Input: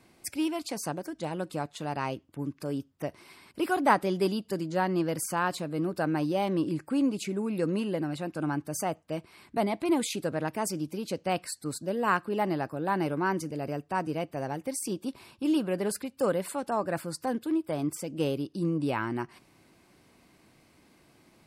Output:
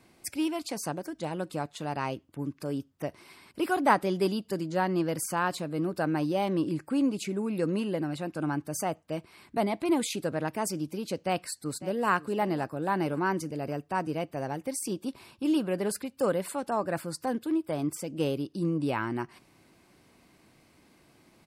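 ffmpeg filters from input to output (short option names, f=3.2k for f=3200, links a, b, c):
-filter_complex "[0:a]asplit=2[a][b];[b]afade=t=in:st=11.14:d=0.01,afade=t=out:st=12.09:d=0.01,aecho=0:1:550|1100|1650:0.141254|0.0565015|0.0226006[c];[a][c]amix=inputs=2:normalize=0"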